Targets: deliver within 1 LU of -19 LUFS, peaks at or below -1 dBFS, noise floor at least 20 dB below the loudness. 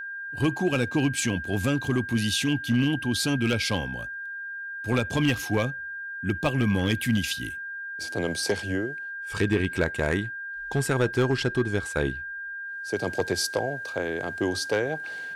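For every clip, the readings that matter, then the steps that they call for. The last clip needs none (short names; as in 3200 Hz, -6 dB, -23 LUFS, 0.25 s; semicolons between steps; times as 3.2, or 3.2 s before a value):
clipped 0.6%; flat tops at -15.5 dBFS; steady tone 1600 Hz; tone level -33 dBFS; loudness -27.0 LUFS; peak -15.5 dBFS; loudness target -19.0 LUFS
-> clip repair -15.5 dBFS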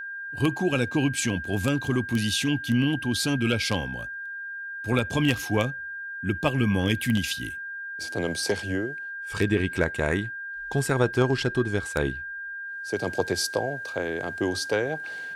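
clipped 0.0%; steady tone 1600 Hz; tone level -33 dBFS
-> notch 1600 Hz, Q 30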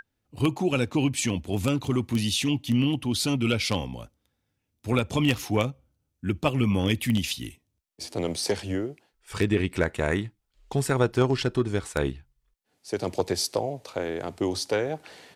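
steady tone none; loudness -27.0 LUFS; peak -6.0 dBFS; loudness target -19.0 LUFS
-> gain +8 dB; limiter -1 dBFS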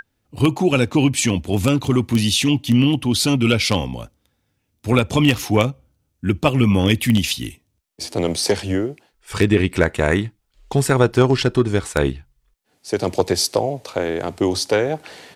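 loudness -19.0 LUFS; peak -1.0 dBFS; noise floor -70 dBFS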